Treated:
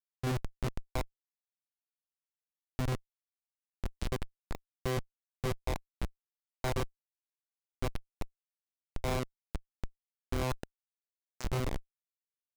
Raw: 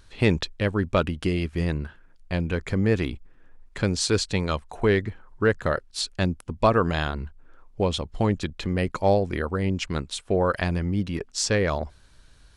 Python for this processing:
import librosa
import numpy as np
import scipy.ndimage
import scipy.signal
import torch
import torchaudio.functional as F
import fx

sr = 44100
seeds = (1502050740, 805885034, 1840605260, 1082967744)

y = fx.noise_reduce_blind(x, sr, reduce_db=17)
y = fx.vocoder(y, sr, bands=8, carrier='saw', carrier_hz=128.0)
y = fx.schmitt(y, sr, flips_db=-22.5)
y = fx.doppler_dist(y, sr, depth_ms=0.12)